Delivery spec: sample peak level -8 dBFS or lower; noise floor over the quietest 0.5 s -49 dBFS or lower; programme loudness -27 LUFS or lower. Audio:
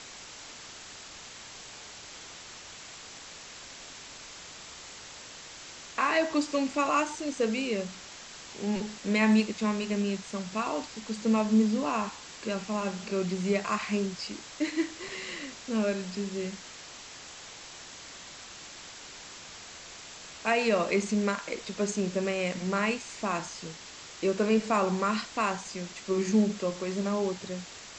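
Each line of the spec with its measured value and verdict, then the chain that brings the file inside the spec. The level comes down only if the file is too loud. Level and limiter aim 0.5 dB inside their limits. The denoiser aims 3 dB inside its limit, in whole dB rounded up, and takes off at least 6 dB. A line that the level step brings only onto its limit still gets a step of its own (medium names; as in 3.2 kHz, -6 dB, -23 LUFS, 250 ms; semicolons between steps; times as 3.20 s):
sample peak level -13.0 dBFS: pass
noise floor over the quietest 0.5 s -46 dBFS: fail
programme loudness -30.0 LUFS: pass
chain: noise reduction 6 dB, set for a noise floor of -46 dBFS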